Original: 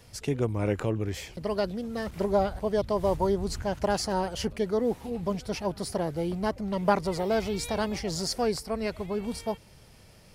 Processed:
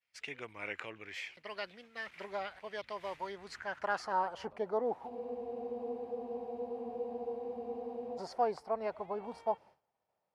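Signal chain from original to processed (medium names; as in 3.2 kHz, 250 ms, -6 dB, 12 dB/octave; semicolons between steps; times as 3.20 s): band-pass sweep 2.2 kHz -> 820 Hz, 3.28–4.61 s; expander -53 dBFS; spectral freeze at 5.12 s, 3.06 s; trim +3 dB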